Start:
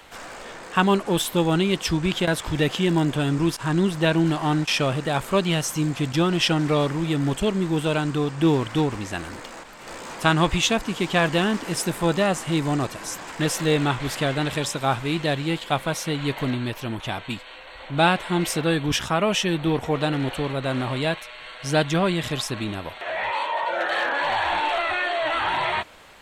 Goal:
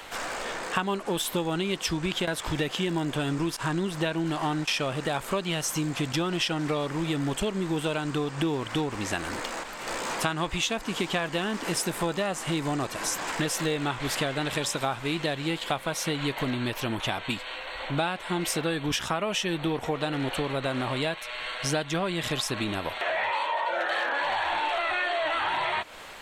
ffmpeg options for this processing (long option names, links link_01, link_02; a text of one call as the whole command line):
ffmpeg -i in.wav -af "equalizer=frequency=79:width=0.33:gain=-6,acompressor=threshold=-31dB:ratio=6,volume=5.5dB" out.wav